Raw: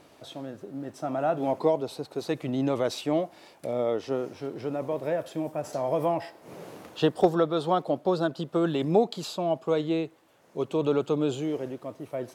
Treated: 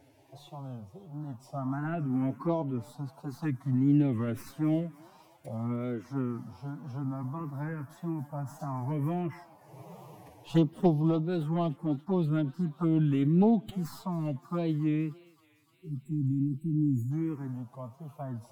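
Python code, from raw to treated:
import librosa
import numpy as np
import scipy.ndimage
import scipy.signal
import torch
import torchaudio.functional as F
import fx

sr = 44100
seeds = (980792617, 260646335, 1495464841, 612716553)

y = fx.tracing_dist(x, sr, depth_ms=0.069)
y = fx.spec_erase(y, sr, start_s=10.1, length_s=1.31, low_hz=370.0, high_hz=7200.0)
y = fx.dynamic_eq(y, sr, hz=1000.0, q=0.7, threshold_db=-38.0, ratio=4.0, max_db=-3)
y = fx.env_phaser(y, sr, low_hz=200.0, high_hz=1600.0, full_db=-20.5)
y = fx.graphic_eq(y, sr, hz=(125, 250, 500, 1000, 4000, 8000), db=(9, 8, -10, 7, -7, -5))
y = fx.echo_thinned(y, sr, ms=190, feedback_pct=80, hz=1000.0, wet_db=-18)
y = fx.wow_flutter(y, sr, seeds[0], rate_hz=2.1, depth_cents=120.0)
y = fx.stretch_vocoder(y, sr, factor=1.5)
y = y * 10.0 ** (-2.0 / 20.0)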